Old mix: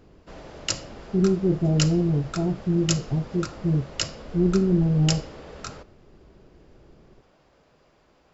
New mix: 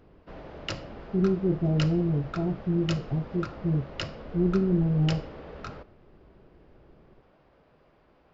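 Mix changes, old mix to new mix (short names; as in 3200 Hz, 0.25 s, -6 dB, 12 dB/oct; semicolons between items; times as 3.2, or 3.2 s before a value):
speech -3.5 dB; background: add air absorption 270 m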